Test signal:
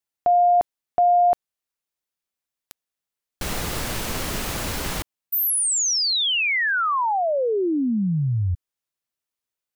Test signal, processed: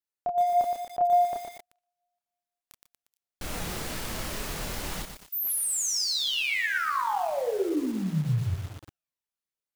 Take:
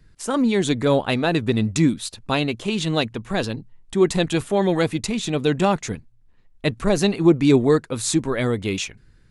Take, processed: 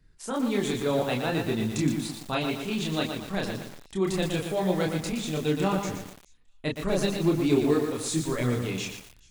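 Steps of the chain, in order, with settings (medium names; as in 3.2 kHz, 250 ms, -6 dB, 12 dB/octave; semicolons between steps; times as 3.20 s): feedback echo behind a high-pass 427 ms, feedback 33%, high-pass 3.6 kHz, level -22.5 dB; chorus voices 4, 0.37 Hz, delay 29 ms, depth 3.8 ms; bit-crushed delay 118 ms, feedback 55%, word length 6-bit, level -5.5 dB; trim -4.5 dB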